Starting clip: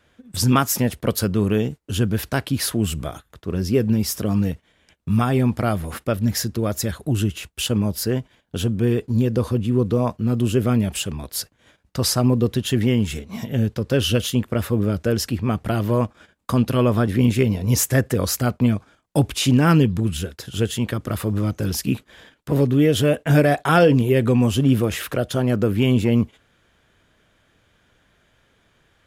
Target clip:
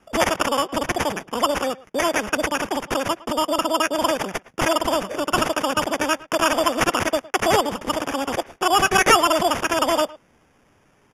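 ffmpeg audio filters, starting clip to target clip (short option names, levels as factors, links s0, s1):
-filter_complex "[0:a]acrossover=split=230[s0][s1];[s0]acompressor=threshold=0.0316:ratio=6[s2];[s1]acrusher=samples=28:mix=1:aa=0.000001[s3];[s2][s3]amix=inputs=2:normalize=0,aresample=11025,aresample=44100,asetrate=115101,aresample=44100,asplit=2[s4][s5];[s5]adelay=110,highpass=300,lowpass=3400,asoftclip=type=hard:threshold=0.237,volume=0.1[s6];[s4][s6]amix=inputs=2:normalize=0,volume=1.26"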